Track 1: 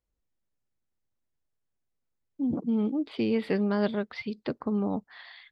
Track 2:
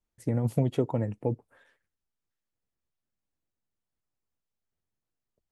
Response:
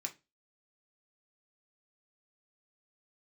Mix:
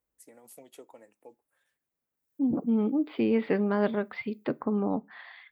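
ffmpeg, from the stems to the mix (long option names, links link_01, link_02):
-filter_complex "[0:a]lowpass=2200,volume=1.5dB,asplit=2[link_01][link_02];[link_02]volume=-10dB[link_03];[1:a]highpass=290,aemphasis=mode=production:type=riaa,volume=-5.5dB,afade=type=in:start_time=2.13:duration=0.28:silence=0.266073,afade=type=out:start_time=4.41:duration=0.38:silence=0.251189,asplit=2[link_04][link_05];[link_05]volume=-11dB[link_06];[2:a]atrim=start_sample=2205[link_07];[link_03][link_06]amix=inputs=2:normalize=0[link_08];[link_08][link_07]afir=irnorm=-1:irlink=0[link_09];[link_01][link_04][link_09]amix=inputs=3:normalize=0,highpass=frequency=140:poles=1"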